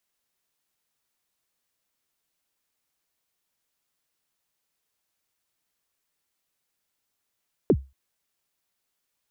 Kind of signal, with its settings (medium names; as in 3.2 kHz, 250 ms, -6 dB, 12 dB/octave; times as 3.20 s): kick drum length 0.23 s, from 490 Hz, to 67 Hz, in 59 ms, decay 0.26 s, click off, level -11 dB